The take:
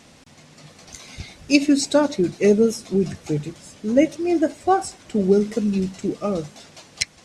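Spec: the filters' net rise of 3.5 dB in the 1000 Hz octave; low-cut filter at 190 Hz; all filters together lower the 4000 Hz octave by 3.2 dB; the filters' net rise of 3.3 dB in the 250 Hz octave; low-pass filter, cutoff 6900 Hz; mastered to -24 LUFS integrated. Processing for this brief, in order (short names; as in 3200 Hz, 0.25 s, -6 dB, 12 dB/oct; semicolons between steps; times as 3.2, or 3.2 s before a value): HPF 190 Hz; LPF 6900 Hz; bell 250 Hz +5.5 dB; bell 1000 Hz +5 dB; bell 4000 Hz -3.5 dB; gain -5.5 dB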